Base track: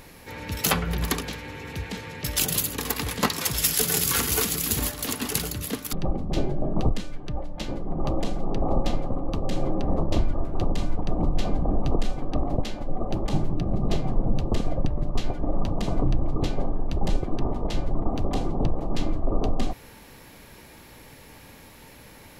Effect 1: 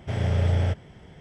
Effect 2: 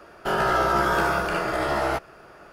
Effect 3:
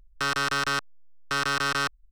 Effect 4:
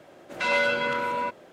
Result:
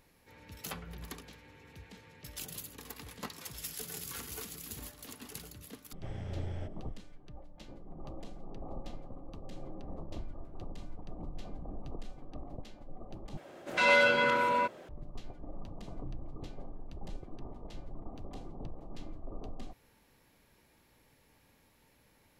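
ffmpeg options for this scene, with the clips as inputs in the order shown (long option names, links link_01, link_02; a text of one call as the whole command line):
ffmpeg -i bed.wav -i cue0.wav -i cue1.wav -i cue2.wav -i cue3.wav -filter_complex "[0:a]volume=-19dB[link_01];[1:a]bandreject=frequency=4600:width=24[link_02];[link_01]asplit=2[link_03][link_04];[link_03]atrim=end=13.374[link_05];[4:a]atrim=end=1.52,asetpts=PTS-STARTPTS,volume=-0.5dB[link_06];[link_04]atrim=start=14.886[link_07];[link_02]atrim=end=1.2,asetpts=PTS-STARTPTS,volume=-17.5dB,afade=type=in:duration=0.004:curve=hsin,afade=type=out:start_time=1.196:duration=0.004:curve=hsin,adelay=5940[link_08];[link_05][link_06]acrossfade=duration=0.004:curve1=hsin:curve2=hsin[link_09];[link_09][link_07]acrossfade=duration=0.004:curve1=hsin:curve2=hsin[link_10];[link_10][link_08]amix=inputs=2:normalize=0" out.wav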